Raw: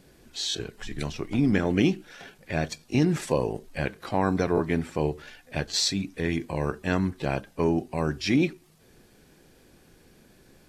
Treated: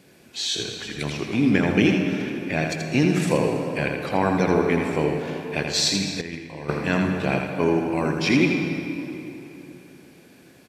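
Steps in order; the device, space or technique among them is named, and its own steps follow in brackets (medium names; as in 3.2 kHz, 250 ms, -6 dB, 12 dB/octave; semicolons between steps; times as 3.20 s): PA in a hall (high-pass 120 Hz 12 dB/octave; peaking EQ 2.4 kHz +5.5 dB 0.48 oct; delay 82 ms -5.5 dB; reverberation RT60 3.4 s, pre-delay 108 ms, DRR 5.5 dB); 6.21–6.69 s: gate -22 dBFS, range -11 dB; trim +2.5 dB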